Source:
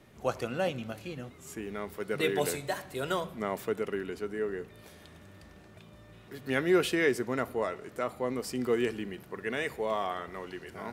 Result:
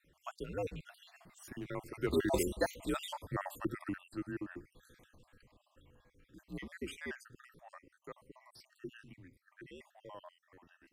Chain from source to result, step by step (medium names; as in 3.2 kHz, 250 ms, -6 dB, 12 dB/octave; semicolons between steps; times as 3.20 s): random holes in the spectrogram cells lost 58%; Doppler pass-by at 2.75 s, 13 m/s, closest 12 m; frequency shift -80 Hz; trim +1 dB